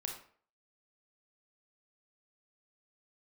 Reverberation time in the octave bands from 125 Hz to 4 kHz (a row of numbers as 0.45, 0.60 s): 0.40, 0.45, 0.50, 0.50, 0.45, 0.35 s